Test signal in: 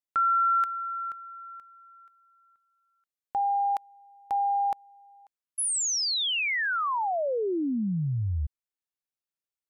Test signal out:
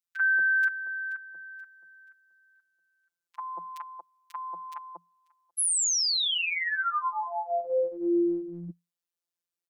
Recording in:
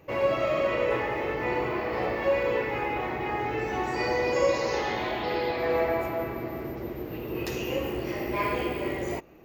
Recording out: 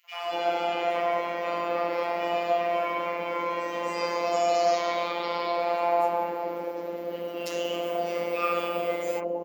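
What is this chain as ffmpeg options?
-filter_complex "[0:a]acrossover=split=660|2000[a][b][c];[b]adelay=40[d];[a]adelay=230[e];[e][d][c]amix=inputs=3:normalize=0,afreqshift=170,afftfilt=real='hypot(re,im)*cos(PI*b)':imag='0':win_size=1024:overlap=0.75,volume=5dB"

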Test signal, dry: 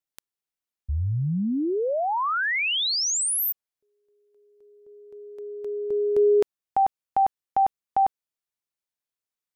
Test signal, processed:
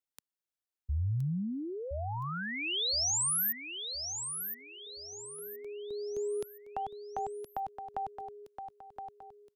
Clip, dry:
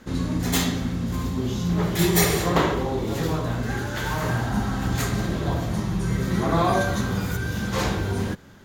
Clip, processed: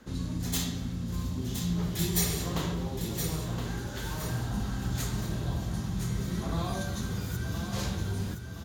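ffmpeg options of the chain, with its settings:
-filter_complex "[0:a]equalizer=f=2.1k:w=3:g=-2.5,acrossover=split=190|2900[a][b][c];[b]acompressor=threshold=-51dB:ratio=1.5:attack=32:release=180:knee=2.83:detection=peak[d];[a][d][c]amix=inputs=3:normalize=0,asplit=2[e][f];[f]aecho=0:1:1019|2038|3057|4076:0.422|0.16|0.0609|0.0231[g];[e][g]amix=inputs=2:normalize=0,volume=-5.5dB"

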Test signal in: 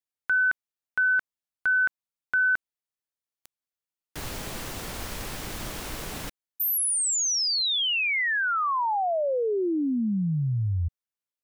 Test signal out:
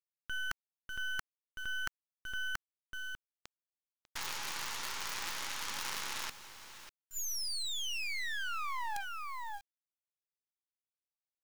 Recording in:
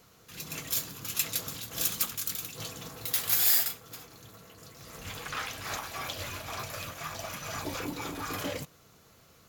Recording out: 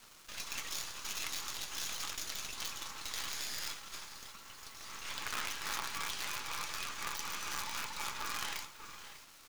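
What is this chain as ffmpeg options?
-af "alimiter=limit=-23.5dB:level=0:latency=1:release=28,afftfilt=real='re*between(b*sr/4096,800,7100)':imag='im*between(b*sr/4096,800,7100)':win_size=4096:overlap=0.75,acontrast=68,aecho=1:1:596:0.158,areverse,acompressor=threshold=-36dB:ratio=5:attack=2.6:release=21:knee=6:detection=peak,areverse,acrusher=bits=6:dc=4:mix=0:aa=0.000001,volume=1dB"

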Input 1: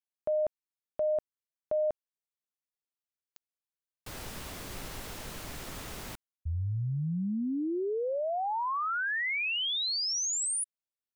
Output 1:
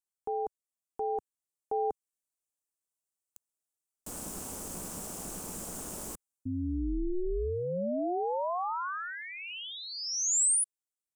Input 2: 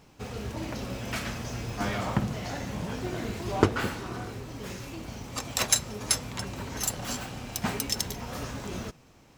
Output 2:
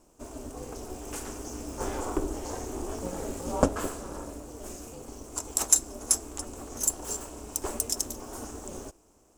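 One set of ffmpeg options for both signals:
-af "aeval=exprs='val(0)*sin(2*PI*180*n/s)':c=same,equalizer=f=125:t=o:w=1:g=-9,equalizer=f=2k:t=o:w=1:g=-11,equalizer=f=4k:t=o:w=1:g=-11,equalizer=f=8k:t=o:w=1:g=11,dynaudnorm=f=510:g=7:m=4.5dB"

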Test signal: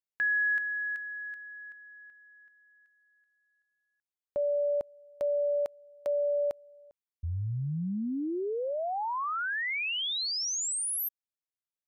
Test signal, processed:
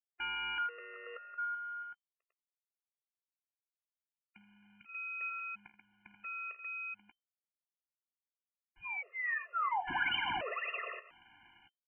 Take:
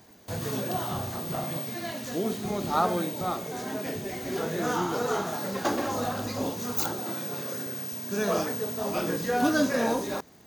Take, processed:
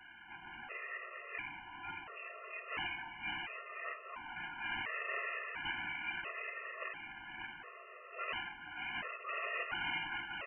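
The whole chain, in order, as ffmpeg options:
-filter_complex "[0:a]highpass=930,aemphasis=mode=production:type=50fm,acrossover=split=1500[a][b];[a]aeval=exprs='sgn(val(0))*max(abs(val(0))-0.00562,0)':c=same[c];[c][b]amix=inputs=2:normalize=0,acrusher=bits=6:mix=0:aa=0.000001,aresample=11025,aeval=exprs='(mod(25.1*val(0)+1,2)-1)/25.1':c=same,aresample=44100,asplit=2[d][e];[e]adelay=15,volume=-12dB[f];[d][f]amix=inputs=2:normalize=0,aecho=1:1:51|80|485|585:0.188|0.2|0.316|0.562,lowpass=f=2.6k:t=q:w=0.5098,lowpass=f=2.6k:t=q:w=0.6013,lowpass=f=2.6k:t=q:w=0.9,lowpass=f=2.6k:t=q:w=2.563,afreqshift=-3100,afftfilt=real='re*gt(sin(2*PI*0.72*pts/sr)*(1-2*mod(floor(b*sr/1024/350),2)),0)':imag='im*gt(sin(2*PI*0.72*pts/sr)*(1-2*mod(floor(b*sr/1024/350),2)),0)':win_size=1024:overlap=0.75"

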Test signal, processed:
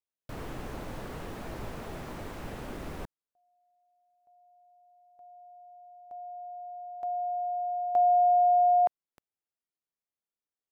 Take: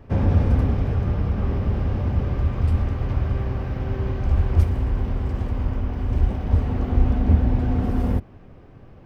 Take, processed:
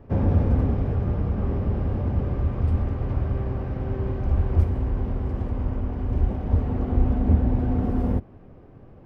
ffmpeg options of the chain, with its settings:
-filter_complex "[0:a]highshelf=f=2k:g=-8,acrossover=split=2800[a][b];[b]acompressor=threshold=-50dB:ratio=4:attack=1:release=60[c];[a][c]amix=inputs=2:normalize=0,equalizer=f=400:w=0.43:g=3.5,volume=-3dB"

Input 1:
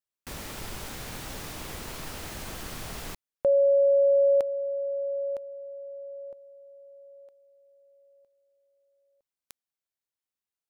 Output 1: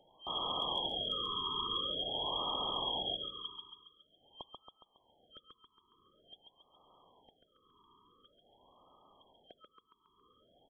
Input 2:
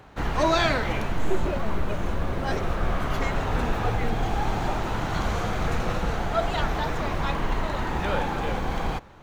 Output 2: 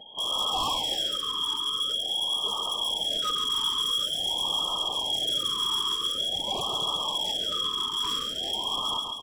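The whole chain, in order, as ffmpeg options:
-filter_complex "[0:a]afftfilt=real='re*(1-between(b*sr/4096,240,2100))':imag='im*(1-between(b*sr/4096,240,2100))':win_size=4096:overlap=0.75,highpass=f=66:w=0.5412,highpass=f=66:w=1.3066,adynamicequalizer=threshold=0.00562:dfrequency=180:dqfactor=1.4:tfrequency=180:tqfactor=1.4:attack=5:release=100:ratio=0.333:range=2.5:mode=cutabove:tftype=bell,acrossover=split=190|1500[a][b][c];[c]acontrast=34[d];[a][b][d]amix=inputs=3:normalize=0,lowpass=f=2.9k:t=q:w=0.5098,lowpass=f=2.9k:t=q:w=0.6013,lowpass=f=2.9k:t=q:w=0.9,lowpass=f=2.9k:t=q:w=2.563,afreqshift=-3400,acompressor=mode=upward:threshold=-45dB:ratio=2.5:attack=2.1:release=491:knee=2.83:detection=peak,asoftclip=type=hard:threshold=-32.5dB,equalizer=f=120:w=2:g=-2,aecho=1:1:138|276|414|552|690|828|966:0.562|0.304|0.164|0.0885|0.0478|0.0258|0.0139,afftfilt=real='re*(1-between(b*sr/1024,630*pow(1900/630,0.5+0.5*sin(2*PI*0.47*pts/sr))/1.41,630*pow(1900/630,0.5+0.5*sin(2*PI*0.47*pts/sr))*1.41))':imag='im*(1-between(b*sr/1024,630*pow(1900/630,0.5+0.5*sin(2*PI*0.47*pts/sr))/1.41,630*pow(1900/630,0.5+0.5*sin(2*PI*0.47*pts/sr))*1.41))':win_size=1024:overlap=0.75,volume=6dB"

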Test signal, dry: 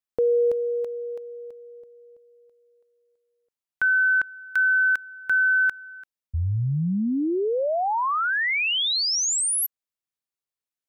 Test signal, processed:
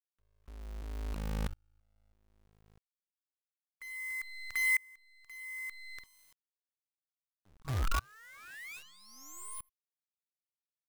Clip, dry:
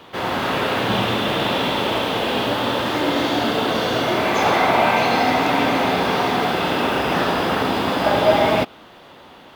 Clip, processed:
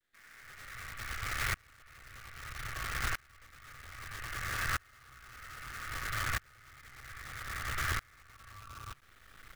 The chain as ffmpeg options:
-filter_complex "[0:a]adynamicequalizer=threshold=0.0126:dfrequency=5300:dqfactor=0.7:tfrequency=5300:tqfactor=0.7:attack=5:release=100:ratio=0.417:range=1.5:mode=boostabove:tftype=bell,acrossover=split=1000|5800[a][b][c];[c]adelay=30[d];[a]adelay=290[e];[e][b][d]amix=inputs=3:normalize=0,aeval=exprs='val(0)*sin(2*PI*530*n/s)':c=same,afftfilt=real='re*(1-between(b*sr/4096,140,1100))':imag='im*(1-between(b*sr/4096,140,1100))':win_size=4096:overlap=0.75,acrossover=split=100[f][g];[f]acontrast=79[h];[g]highshelf=f=2.7k:t=q:w=3:g=-11.5[i];[h][i]amix=inputs=2:normalize=0,acompressor=threshold=-27dB:ratio=5:attack=48:release=51:knee=6:detection=rms,alimiter=limit=-22.5dB:level=0:latency=1:release=185,acrusher=bits=6:dc=4:mix=0:aa=0.000001,aeval=exprs='val(0)*pow(10,-32*if(lt(mod(-0.62*n/s,1),2*abs(-0.62)/1000),1-mod(-0.62*n/s,1)/(2*abs(-0.62)/1000),(mod(-0.62*n/s,1)-2*abs(-0.62)/1000)/(1-2*abs(-0.62)/1000))/20)':c=same"

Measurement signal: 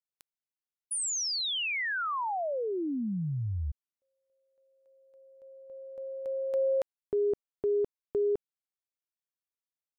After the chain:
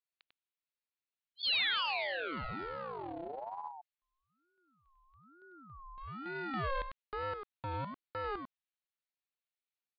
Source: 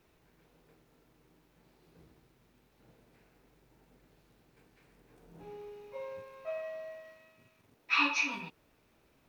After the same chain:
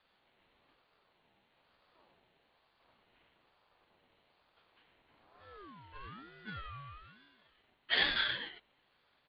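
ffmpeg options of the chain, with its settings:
-af "aecho=1:1:97:0.447,aresample=8000,aeval=exprs='clip(val(0),-1,0.0178)':c=same,aresample=44100,crystalizer=i=9:c=0,aeval=exprs='val(0)*sin(2*PI*710*n/s+710*0.3/1.1*sin(2*PI*1.1*n/s))':c=same,volume=-7dB"

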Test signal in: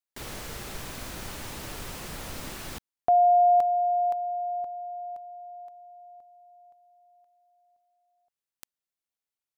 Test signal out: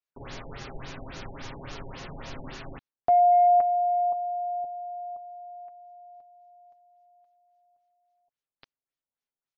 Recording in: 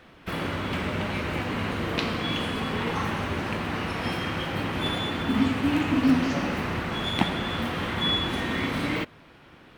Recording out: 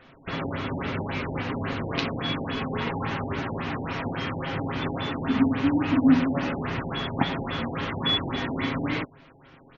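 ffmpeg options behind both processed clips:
-af "aecho=1:1:7.4:0.49,aeval=exprs='0.398*(cos(1*acos(clip(val(0)/0.398,-1,1)))-cos(1*PI/2))+0.0158*(cos(3*acos(clip(val(0)/0.398,-1,1)))-cos(3*PI/2))':c=same,afftfilt=real='re*lt(b*sr/1024,880*pow(7200/880,0.5+0.5*sin(2*PI*3.6*pts/sr)))':imag='im*lt(b*sr/1024,880*pow(7200/880,0.5+0.5*sin(2*PI*3.6*pts/sr)))':win_size=1024:overlap=0.75"

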